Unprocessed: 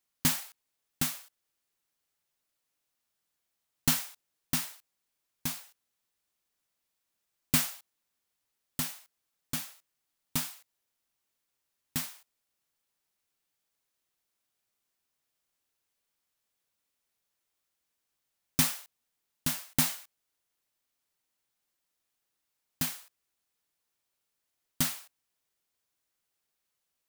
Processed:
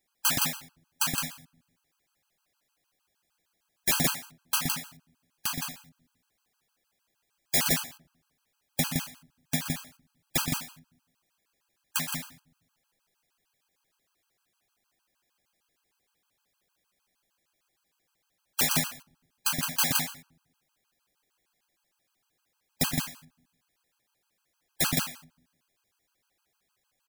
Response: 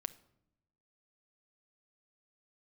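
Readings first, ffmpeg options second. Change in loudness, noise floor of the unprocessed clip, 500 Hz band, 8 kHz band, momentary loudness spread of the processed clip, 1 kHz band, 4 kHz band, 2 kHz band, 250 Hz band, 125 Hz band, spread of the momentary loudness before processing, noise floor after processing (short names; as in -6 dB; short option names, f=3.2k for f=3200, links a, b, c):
+3.0 dB, -83 dBFS, +9.5 dB, +4.0 dB, 13 LU, +7.5 dB, +5.5 dB, +6.5 dB, +3.0 dB, +3.5 dB, 16 LU, -79 dBFS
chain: -filter_complex "[0:a]highshelf=f=4.1k:g=-6,aecho=1:1:122.4|166.2:0.355|0.562,aeval=exprs='(mod(16.8*val(0)+1,2)-1)/16.8':c=same,asplit=2[a][b];[1:a]atrim=start_sample=2205,asetrate=48510,aresample=44100[c];[b][c]afir=irnorm=-1:irlink=0,volume=4.5dB[d];[a][d]amix=inputs=2:normalize=0,afftfilt=real='re*gt(sin(2*PI*6.5*pts/sr)*(1-2*mod(floor(b*sr/1024/820),2)),0)':imag='im*gt(sin(2*PI*6.5*pts/sr)*(1-2*mod(floor(b*sr/1024/820),2)),0)':win_size=1024:overlap=0.75,volume=4dB"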